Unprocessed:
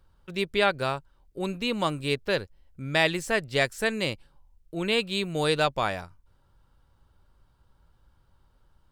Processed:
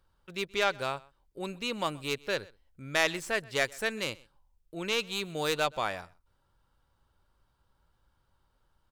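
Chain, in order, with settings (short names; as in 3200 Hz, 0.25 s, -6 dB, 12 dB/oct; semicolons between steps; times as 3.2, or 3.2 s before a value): tracing distortion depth 0.06 ms; low shelf 340 Hz -6.5 dB; echo 0.127 s -24 dB; gain -3.5 dB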